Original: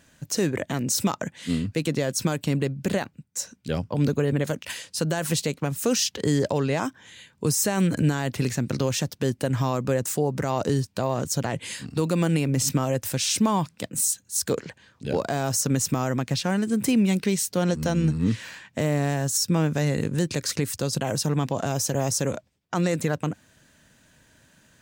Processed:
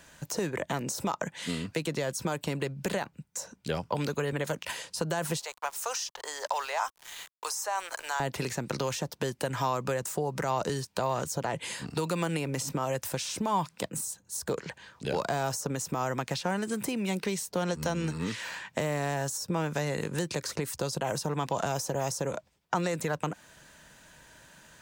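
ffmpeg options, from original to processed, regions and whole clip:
-filter_complex "[0:a]asettb=1/sr,asplit=3[s0][s1][s2];[s0]atrim=end=5.394[s3];[s1]atrim=start=5.39:end=8.2,asetpts=PTS-STARTPTS,afade=t=in:d=0.004:c=qsin,afade=t=out:st=2.806:d=0.004:c=qsin,highpass=f=790:w=0.5412,highpass=f=790:w=1.3066,equalizer=f=5900:w=1.8:g=5,aeval=exprs='val(0)*gte(abs(val(0)),0.00596)':c=same[s4];[s2]atrim=start=8.196[s5];[s3][s4]acrossfade=d=0.004:c1=hsin:c2=qsin[s6];[s6][s5]acrossfade=d=0.004:c1=qsin:c2=hsin,bandreject=f=1100:w=16,acrossover=split=250|1100[s7][s8][s9];[s7]acompressor=threshold=0.0141:ratio=4[s10];[s8]acompressor=threshold=0.0178:ratio=4[s11];[s9]acompressor=threshold=0.00891:ratio=4[s12];[s10][s11][s12]amix=inputs=3:normalize=0,equalizer=f=100:t=o:w=0.67:g=-9,equalizer=f=250:t=o:w=0.67:g=-7,equalizer=f=1000:t=o:w=0.67:g=6,volume=1.58"

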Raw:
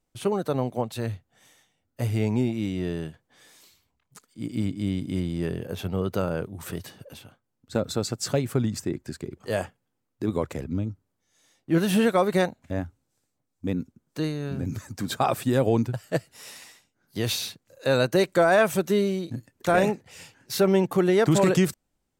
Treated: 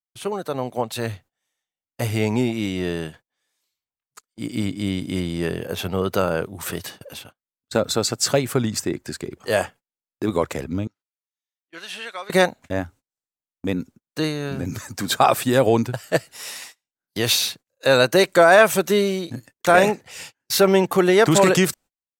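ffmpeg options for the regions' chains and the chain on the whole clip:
-filter_complex "[0:a]asettb=1/sr,asplit=3[s0][s1][s2];[s0]atrim=end=10.874[s3];[s1]atrim=start=10.87:end=12.3,asetpts=PTS-STARTPTS,afade=t=in:d=0.004:c=qsin,afade=t=out:st=1.426:d=0.004:c=qsin,highpass=140,lowpass=3300,aderivative[s4];[s2]atrim=start=12.296[s5];[s3][s4]acrossfade=d=0.004:c1=hsin:c2=qsin[s6];[s6][s5]acrossfade=d=0.004:c1=qsin:c2=hsin,agate=range=0.0316:threshold=0.00447:ratio=16:detection=peak,lowshelf=f=370:g=-10,dynaudnorm=f=530:g=3:m=2.37,volume=1.33"

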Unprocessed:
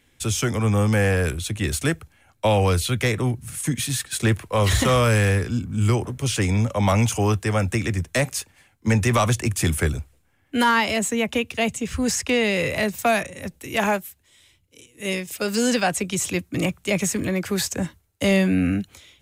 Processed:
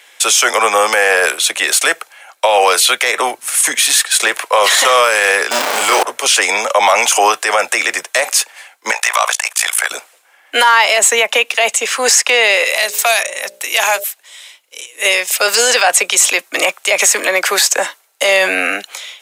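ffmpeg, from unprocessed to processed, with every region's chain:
-filter_complex "[0:a]asettb=1/sr,asplit=3[s0][s1][s2];[s0]atrim=end=5.514[s3];[s1]atrim=start=5.51:end=6.03,asetpts=PTS-STARTPTS,afade=t=in:d=0.004:c=qsin,afade=t=out:st=0.516:d=0.004:c=qsin,aeval=exprs='val(0)+0.5*0.0668*sgn(val(0))':c=same,asplit=2[s4][s5];[s5]adelay=30,volume=0.631[s6];[s4][s6]amix=inputs=2:normalize=0,atrim=end_sample=22932[s7];[s2]atrim=start=6.026[s8];[s3][s7]acrossfade=d=0.004:c1=hsin:c2=qsin[s9];[s9][s8]acrossfade=d=0.004:c1=qsin:c2=hsin,asettb=1/sr,asplit=3[s10][s11][s12];[s10]atrim=end=8.914[s13];[s11]atrim=start=8.91:end=9.91,asetpts=PTS-STARTPTS,afade=t=in:d=0.004:c=qsin,afade=t=out:st=0.996:d=0.004:c=qsin,highpass=f=660:w=0.5412,highpass=f=660:w=1.3066,tremolo=f=57:d=0.889[s14];[s12]atrim=start=9.906[s15];[s13][s14]acrossfade=d=0.004:c1=hsin:c2=qsin[s16];[s16][s15]acrossfade=d=0.004:c1=qsin:c2=hsin,asettb=1/sr,asplit=3[s17][s18][s19];[s17]atrim=end=12.644[s20];[s18]atrim=start=12.64:end=14.04,asetpts=PTS-STARTPTS,afade=t=in:d=0.004:c=qsin,afade=t=out:st=1.396:d=0.004:c=qsin,bandreject=f=60:t=h:w=6,bandreject=f=120:t=h:w=6,bandreject=f=180:t=h:w=6,bandreject=f=240:t=h:w=6,bandreject=f=300:t=h:w=6,bandreject=f=360:t=h:w=6,bandreject=f=420:t=h:w=6,bandreject=f=480:t=h:w=6,bandreject=f=540:t=h:w=6,bandreject=f=600:t=h:w=6,acrossover=split=120|3000[s21][s22][s23];[s22]acompressor=threshold=0.01:ratio=2:attack=3.2:release=140:knee=2.83:detection=peak[s24];[s21][s24][s23]amix=inputs=3:normalize=0[s25];[s19]atrim=start=14.036[s26];[s20][s25]acrossfade=d=0.004:c1=hsin:c2=qsin[s27];[s27][s26]acrossfade=d=0.004:c1=qsin:c2=hsin,highpass=f=590:w=0.5412,highpass=f=590:w=1.3066,highshelf=f=12000:g=-5,alimiter=level_in=11.2:limit=0.891:release=50:level=0:latency=1,volume=0.891"

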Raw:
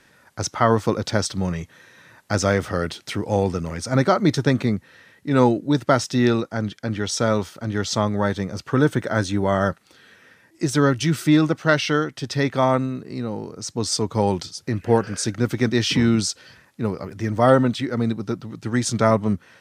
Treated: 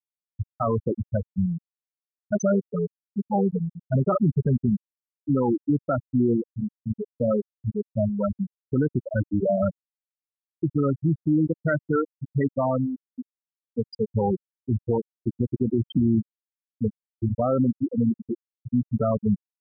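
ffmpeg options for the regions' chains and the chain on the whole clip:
-filter_complex "[0:a]asettb=1/sr,asplit=3[s0][s1][s2];[s0]atrim=end=2.324[s3];[s1]atrim=start=2.32:end=4.63,asetpts=PTS-STARTPTS,afade=t=in:d=0.004:c=qsin,afade=t=out:st=2.306:d=0.004:c=qsin,highpass=45,asubboost=boost=8:cutoff=110,aecho=1:1:4.9:0.67,atrim=end_sample=101871[s4];[s2]atrim=start=4.626[s5];[s3][s4]acrossfade=d=0.004:c1=hsin:c2=qsin[s6];[s6][s5]acrossfade=d=0.004:c1=qsin:c2=hsin,afftfilt=real='re*gte(hypot(re,im),0.501)':imag='im*gte(hypot(re,im),0.501)':win_size=1024:overlap=0.75,alimiter=limit=0.158:level=0:latency=1:release=48,volume=1.26"

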